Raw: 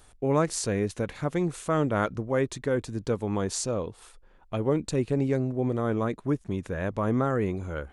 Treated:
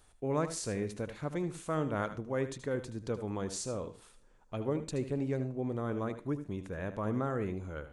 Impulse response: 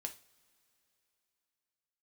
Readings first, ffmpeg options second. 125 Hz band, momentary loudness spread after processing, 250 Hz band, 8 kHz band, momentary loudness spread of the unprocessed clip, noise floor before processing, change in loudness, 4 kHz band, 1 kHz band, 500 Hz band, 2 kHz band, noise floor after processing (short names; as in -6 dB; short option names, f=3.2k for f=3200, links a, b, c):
-7.5 dB, 6 LU, -7.5 dB, -7.5 dB, 6 LU, -56 dBFS, -7.5 dB, -7.5 dB, -7.5 dB, -7.5 dB, -7.5 dB, -63 dBFS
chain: -filter_complex "[0:a]asplit=2[a][b];[1:a]atrim=start_sample=2205,adelay=76[c];[b][c]afir=irnorm=-1:irlink=0,volume=-8.5dB[d];[a][d]amix=inputs=2:normalize=0,volume=-8dB"